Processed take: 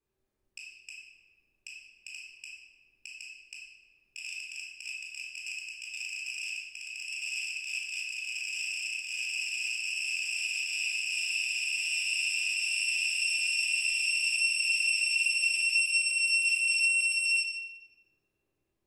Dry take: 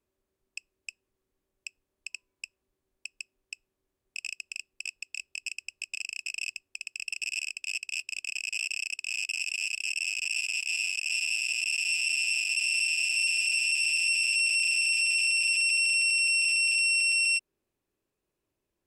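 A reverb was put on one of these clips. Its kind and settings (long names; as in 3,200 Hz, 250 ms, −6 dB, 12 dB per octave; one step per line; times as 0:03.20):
rectangular room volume 1,000 cubic metres, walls mixed, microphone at 3.8 metres
level −8 dB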